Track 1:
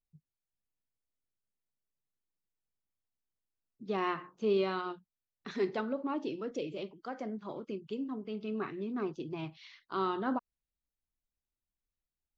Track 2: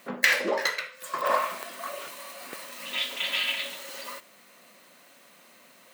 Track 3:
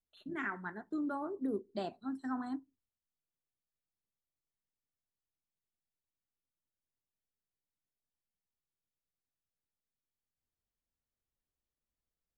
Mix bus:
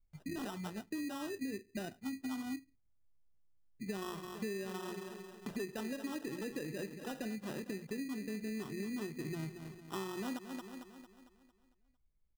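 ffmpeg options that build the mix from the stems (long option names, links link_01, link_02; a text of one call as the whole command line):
ffmpeg -i stem1.wav -i stem2.wav -i stem3.wav -filter_complex "[0:a]volume=-3dB,asplit=2[link_01][link_02];[link_02]volume=-13dB[link_03];[2:a]volume=-2.5dB[link_04];[link_03]aecho=0:1:226|452|678|904|1130|1356|1582:1|0.48|0.23|0.111|0.0531|0.0255|0.0122[link_05];[link_01][link_04][link_05]amix=inputs=3:normalize=0,aemphasis=mode=reproduction:type=riaa,acrusher=samples=20:mix=1:aa=0.000001,acompressor=threshold=-37dB:ratio=10" out.wav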